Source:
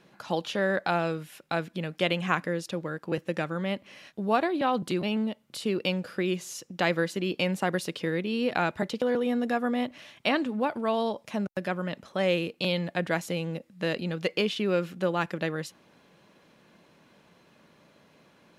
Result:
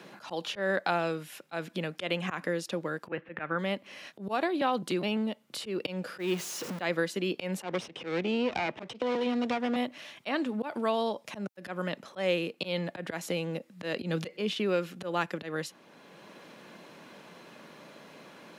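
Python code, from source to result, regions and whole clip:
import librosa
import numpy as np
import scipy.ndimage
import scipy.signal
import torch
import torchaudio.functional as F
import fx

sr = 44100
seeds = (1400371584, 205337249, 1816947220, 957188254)

y = fx.chain(x, sr, fx.lowpass(hz=2700.0, slope=24),
    fx.peak_eq(hz=1700.0, db=7.0, octaves=1.5), at=(3.07, 3.59))
y = fx.chain(y, sr, fx.zero_step(step_db=-33.5),
    fx.peak_eq(hz=8200.0, db=-4.0, octaves=1.4), at=(6.18, 6.82))
y = fx.chain(y, sr, fx.lower_of_two(delay_ms=0.35),
    fx.air_absorb(metres=110.0),
    fx.band_squash(depth_pct=100), at=(7.63, 9.76))
y = fx.chain(y, sr, fx.low_shelf(hz=330.0, db=7.5),
    fx.band_squash(depth_pct=70), at=(14.01, 14.54))
y = scipy.signal.sosfilt(scipy.signal.bessel(2, 210.0, 'highpass', norm='mag', fs=sr, output='sos'), y)
y = fx.auto_swell(y, sr, attack_ms=147.0)
y = fx.band_squash(y, sr, depth_pct=40)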